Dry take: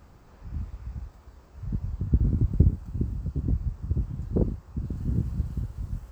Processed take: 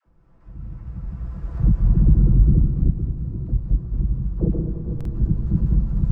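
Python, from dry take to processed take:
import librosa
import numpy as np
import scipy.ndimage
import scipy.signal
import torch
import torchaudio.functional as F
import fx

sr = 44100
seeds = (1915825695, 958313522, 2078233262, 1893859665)

p1 = fx.reverse_delay_fb(x, sr, ms=212, feedback_pct=49, wet_db=-1)
p2 = fx.doppler_pass(p1, sr, speed_mps=21, closest_m=8.7, pass_at_s=1.94)
p3 = fx.recorder_agc(p2, sr, target_db=-16.5, rise_db_per_s=7.3, max_gain_db=30)
p4 = fx.lowpass(p3, sr, hz=1100.0, slope=6)
p5 = fx.low_shelf(p4, sr, hz=87.0, db=9.5)
p6 = fx.notch(p5, sr, hz=830.0, q=22.0)
p7 = p6 + 0.61 * np.pad(p6, (int(6.0 * sr / 1000.0), 0))[:len(p6)]
p8 = fx.level_steps(p7, sr, step_db=23)
p9 = p7 + F.gain(torch.from_numpy(p8), 0.0).numpy()
p10 = fx.dispersion(p9, sr, late='lows', ms=65.0, hz=490.0)
p11 = p10 + fx.echo_single(p10, sr, ms=211, db=-9.5, dry=0)
p12 = fx.rev_freeverb(p11, sr, rt60_s=3.9, hf_ratio=0.95, predelay_ms=35, drr_db=10.5)
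y = fx.buffer_glitch(p12, sr, at_s=(4.96,), block=2048, repeats=1)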